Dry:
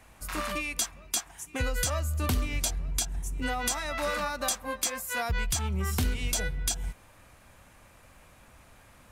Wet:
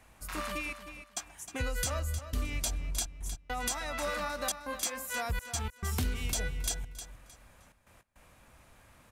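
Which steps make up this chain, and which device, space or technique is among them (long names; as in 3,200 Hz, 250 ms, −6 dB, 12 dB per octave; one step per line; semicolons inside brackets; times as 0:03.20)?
trance gate with a delay (gate pattern "xxxxx.x.xxxxxxx." 103 BPM −60 dB; repeating echo 310 ms, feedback 25%, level −11 dB)
level −4 dB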